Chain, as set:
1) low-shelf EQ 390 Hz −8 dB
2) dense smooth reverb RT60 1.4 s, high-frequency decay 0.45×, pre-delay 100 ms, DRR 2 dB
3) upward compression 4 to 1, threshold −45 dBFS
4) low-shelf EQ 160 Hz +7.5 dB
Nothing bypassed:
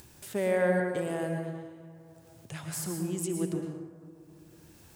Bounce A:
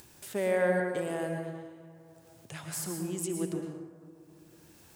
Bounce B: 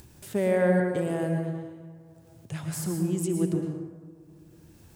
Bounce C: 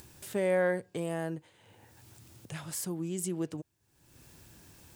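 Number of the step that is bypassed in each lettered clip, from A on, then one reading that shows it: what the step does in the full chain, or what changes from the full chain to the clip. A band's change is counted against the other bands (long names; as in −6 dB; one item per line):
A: 4, 125 Hz band −3.5 dB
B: 1, 125 Hz band +5.5 dB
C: 2, change in momentary loudness spread −4 LU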